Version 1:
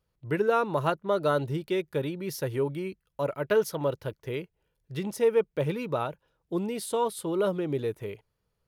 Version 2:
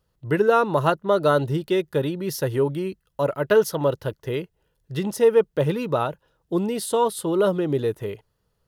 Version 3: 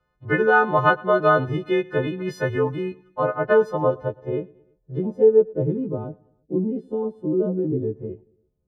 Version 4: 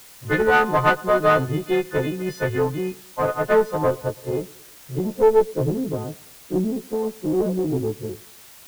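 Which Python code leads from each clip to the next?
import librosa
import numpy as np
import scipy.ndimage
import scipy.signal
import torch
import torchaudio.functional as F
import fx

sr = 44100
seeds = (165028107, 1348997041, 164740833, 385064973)

y1 = fx.notch(x, sr, hz=2300.0, q=6.4)
y1 = y1 * 10.0 ** (6.5 / 20.0)
y2 = fx.freq_snap(y1, sr, grid_st=3)
y2 = fx.filter_sweep_lowpass(y2, sr, from_hz=1700.0, to_hz=310.0, start_s=2.82, end_s=5.93, q=1.4)
y2 = fx.echo_feedback(y2, sr, ms=112, feedback_pct=49, wet_db=-23.5)
y3 = fx.diode_clip(y2, sr, knee_db=-18.0)
y3 = fx.quant_dither(y3, sr, seeds[0], bits=8, dither='triangular')
y3 = y3 * 10.0 ** (2.0 / 20.0)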